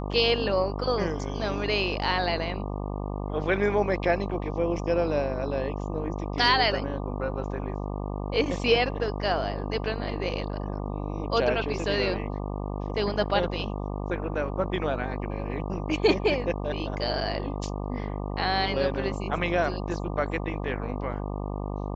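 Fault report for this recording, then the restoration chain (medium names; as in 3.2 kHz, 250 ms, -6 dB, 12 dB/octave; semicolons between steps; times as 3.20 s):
buzz 50 Hz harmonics 24 -32 dBFS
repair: de-hum 50 Hz, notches 24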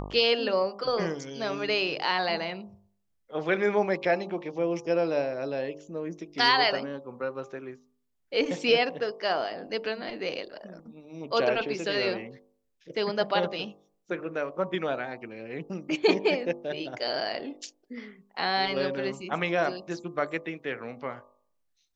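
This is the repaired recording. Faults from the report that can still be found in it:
nothing left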